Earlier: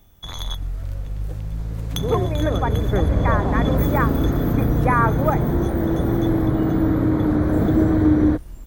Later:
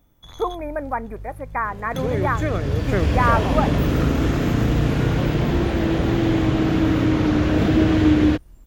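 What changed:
speech: entry −1.70 s
first sound −10.0 dB
second sound: remove moving average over 16 samples

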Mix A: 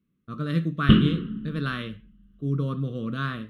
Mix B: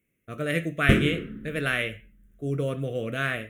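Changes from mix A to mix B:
background: remove low-pass with resonance 2,900 Hz, resonance Q 9.7
master: remove drawn EQ curve 110 Hz 0 dB, 190 Hz +9 dB, 710 Hz −14 dB, 1,100 Hz +7 dB, 2,200 Hz −17 dB, 4,500 Hz +8 dB, 6,800 Hz −16 dB

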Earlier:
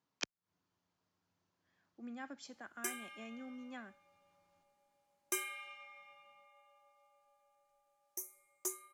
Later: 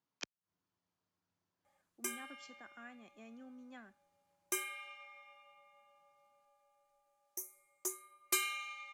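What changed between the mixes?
speech −5.0 dB
background: entry −0.80 s

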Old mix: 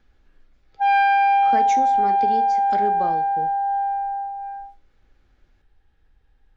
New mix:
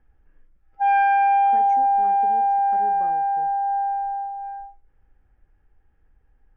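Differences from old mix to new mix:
speech −12.0 dB
master: add moving average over 11 samples

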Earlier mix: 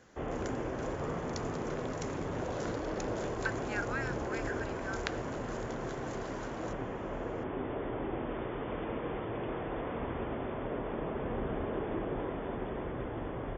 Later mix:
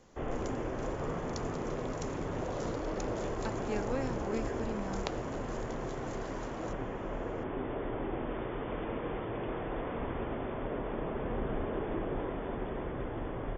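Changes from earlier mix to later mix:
speech: remove high-pass with resonance 1,500 Hz, resonance Q 5.6
master: remove high-pass filter 42 Hz

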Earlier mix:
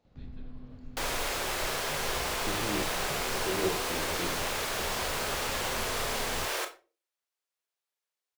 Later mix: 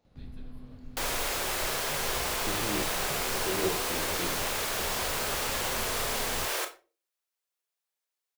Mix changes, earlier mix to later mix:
first sound: remove high-frequency loss of the air 95 metres
master: add high-shelf EQ 8,600 Hz +6.5 dB

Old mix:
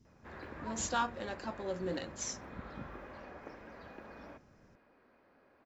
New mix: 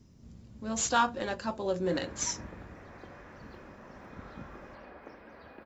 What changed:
speech +7.0 dB
background: entry +1.60 s

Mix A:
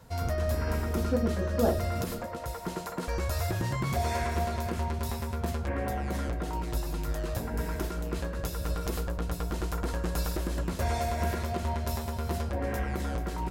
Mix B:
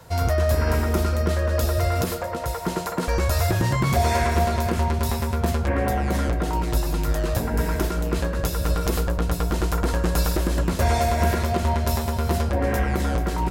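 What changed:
speech −9.5 dB
background +9.0 dB

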